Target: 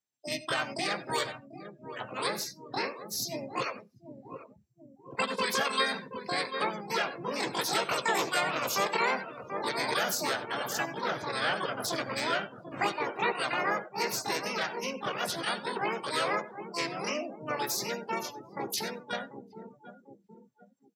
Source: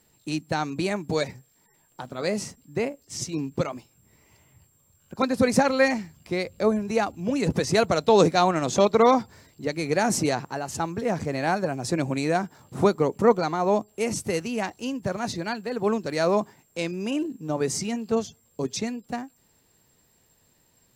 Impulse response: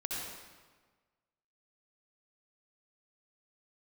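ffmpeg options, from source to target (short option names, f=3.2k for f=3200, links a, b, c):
-filter_complex "[0:a]lowpass=6.7k,equalizer=f=3.8k:w=3.1:g=-4,asplit=2[a][b];[b]adelay=739,lowpass=f=1.6k:p=1,volume=-13.5dB,asplit=2[c][d];[d]adelay=739,lowpass=f=1.6k:p=1,volume=0.5,asplit=2[e][f];[f]adelay=739,lowpass=f=1.6k:p=1,volume=0.5,asplit=2[g][h];[h]adelay=739,lowpass=f=1.6k:p=1,volume=0.5,asplit=2[i][j];[j]adelay=739,lowpass=f=1.6k:p=1,volume=0.5[k];[a][c][e][g][i][k]amix=inputs=6:normalize=0,asplit=4[l][m][n][o];[m]asetrate=33038,aresample=44100,atempo=1.33484,volume=-6dB[p];[n]asetrate=37084,aresample=44100,atempo=1.18921,volume=-1dB[q];[o]asetrate=88200,aresample=44100,atempo=0.5,volume=-2dB[r];[l][p][q][r]amix=inputs=4:normalize=0,tiltshelf=f=1.3k:g=-5.5,acrossover=split=430|1400[s][t][u];[s]acompressor=threshold=-39dB:ratio=4[v];[t]acompressor=threshold=-28dB:ratio=4[w];[u]acompressor=threshold=-26dB:ratio=4[x];[v][w][x]amix=inputs=3:normalize=0,asplit=2[y][z];[1:a]atrim=start_sample=2205,atrim=end_sample=3969,adelay=15[aa];[z][aa]afir=irnorm=-1:irlink=0,volume=-9dB[ab];[y][ab]amix=inputs=2:normalize=0,afftdn=nr=29:nf=-40,highpass=100,volume=-4dB"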